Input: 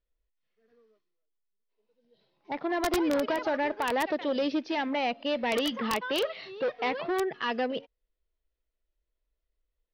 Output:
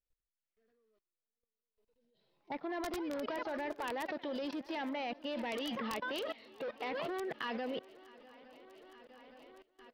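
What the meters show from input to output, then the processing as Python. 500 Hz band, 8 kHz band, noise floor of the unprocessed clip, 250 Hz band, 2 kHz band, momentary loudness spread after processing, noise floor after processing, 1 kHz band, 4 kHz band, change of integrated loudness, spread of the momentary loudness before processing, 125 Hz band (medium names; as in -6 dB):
-10.0 dB, -11.0 dB, -84 dBFS, -9.5 dB, -9.0 dB, 19 LU, under -85 dBFS, -9.5 dB, -9.5 dB, -9.5 dB, 6 LU, -7.0 dB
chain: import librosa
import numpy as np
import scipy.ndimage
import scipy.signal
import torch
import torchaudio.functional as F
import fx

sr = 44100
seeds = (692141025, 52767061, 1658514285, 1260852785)

y = fx.echo_swing(x, sr, ms=865, ratio=3, feedback_pct=54, wet_db=-19)
y = fx.level_steps(y, sr, step_db=19)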